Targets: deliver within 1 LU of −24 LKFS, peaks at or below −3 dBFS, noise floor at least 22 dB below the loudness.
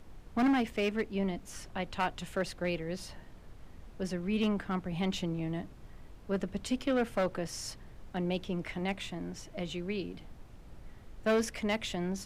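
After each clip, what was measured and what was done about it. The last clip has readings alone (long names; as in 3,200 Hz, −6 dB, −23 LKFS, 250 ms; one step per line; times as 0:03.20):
share of clipped samples 1.3%; peaks flattened at −23.5 dBFS; background noise floor −52 dBFS; target noise floor −57 dBFS; integrated loudness −34.5 LKFS; sample peak −23.5 dBFS; target loudness −24.0 LKFS
→ clipped peaks rebuilt −23.5 dBFS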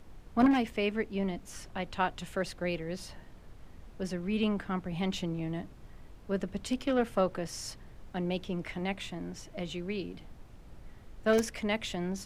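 share of clipped samples 0.0%; background noise floor −52 dBFS; target noise floor −56 dBFS
→ noise reduction from a noise print 6 dB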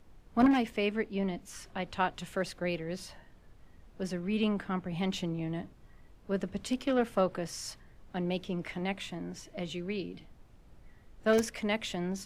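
background noise floor −58 dBFS; integrated loudness −33.5 LKFS; sample peak −14.5 dBFS; target loudness −24.0 LKFS
→ level +9.5 dB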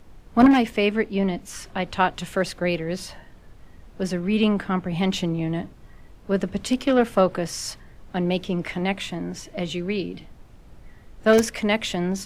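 integrated loudness −24.0 LKFS; sample peak −5.0 dBFS; background noise floor −48 dBFS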